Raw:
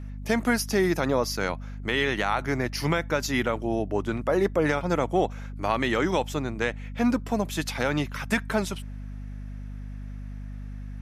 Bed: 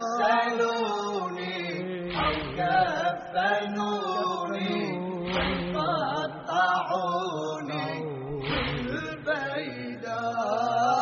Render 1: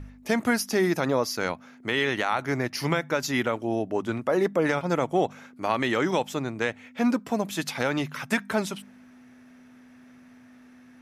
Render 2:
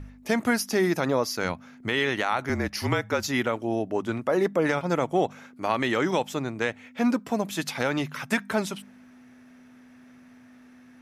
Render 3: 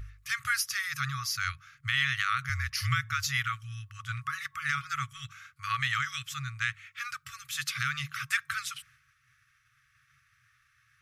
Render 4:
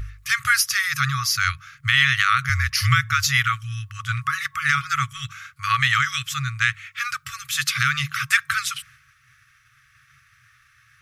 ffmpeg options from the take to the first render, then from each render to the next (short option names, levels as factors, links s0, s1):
-af "bandreject=f=50:t=h:w=4,bandreject=f=100:t=h:w=4,bandreject=f=150:t=h:w=4,bandreject=f=200:t=h:w=4"
-filter_complex "[0:a]asplit=3[s0][s1][s2];[s0]afade=t=out:st=1.43:d=0.02[s3];[s1]asubboost=boost=3.5:cutoff=240,afade=t=in:st=1.43:d=0.02,afade=t=out:st=1.89:d=0.02[s4];[s2]afade=t=in:st=1.89:d=0.02[s5];[s3][s4][s5]amix=inputs=3:normalize=0,asettb=1/sr,asplit=3[s6][s7][s8];[s6]atrim=end=2.494[s9];[s7]atrim=start=2.49:end=3.28,asetpts=PTS-STARTPTS,afade=t=in:d=0.004:c=qsin,afade=t=out:st=0.786:d=0.004:c=qsin,afreqshift=-40[s10];[s8]atrim=start=3.276[s11];[s9][s10]acrossfade=d=0.004:c1=hsin:c2=qsin[s12];[s12][s11]acrossfade=d=0.004:c1=qsin:c2=hsin"
-af "afftfilt=real='re*(1-between(b*sr/4096,140,1100))':imag='im*(1-between(b*sr/4096,140,1100))':win_size=4096:overlap=0.75,agate=range=0.0224:threshold=0.00158:ratio=3:detection=peak"
-af "volume=3.35"